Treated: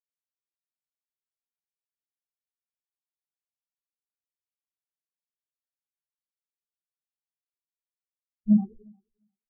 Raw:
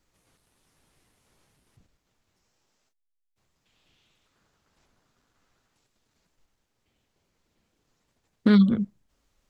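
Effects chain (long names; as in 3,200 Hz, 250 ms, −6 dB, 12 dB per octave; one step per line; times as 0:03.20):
reversed piece by piece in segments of 36 ms
low-pass filter 1,000 Hz
harmonic generator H 8 −6 dB, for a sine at −9 dBFS
double-tracking delay 14 ms −2 dB
repeating echo 352 ms, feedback 54%, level −8 dB
every bin expanded away from the loudest bin 4 to 1
level −8 dB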